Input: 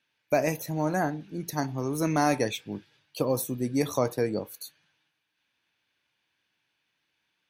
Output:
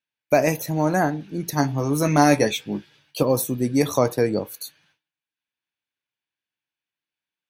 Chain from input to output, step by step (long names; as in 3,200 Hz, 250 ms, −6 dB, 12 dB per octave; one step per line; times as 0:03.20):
noise gate with hold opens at −60 dBFS
0:01.55–0:03.23: double-tracking delay 14 ms −6 dB
level +6.5 dB